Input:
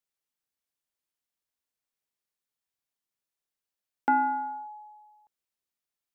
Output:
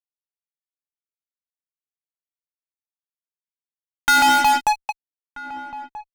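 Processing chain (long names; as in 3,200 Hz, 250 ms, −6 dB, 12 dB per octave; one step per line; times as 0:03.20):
auto-filter high-pass saw up 4.5 Hz 930–2,200 Hz
fuzz pedal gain 47 dB, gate −46 dBFS
slap from a distant wall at 220 metres, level −15 dB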